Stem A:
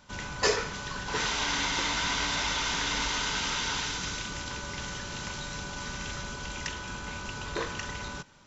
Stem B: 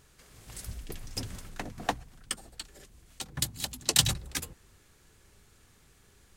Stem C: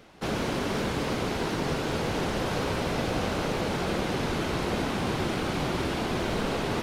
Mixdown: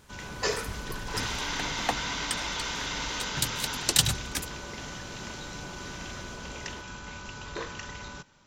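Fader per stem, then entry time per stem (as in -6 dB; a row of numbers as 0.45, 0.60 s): -3.5, +1.0, -17.0 dB; 0.00, 0.00, 0.00 s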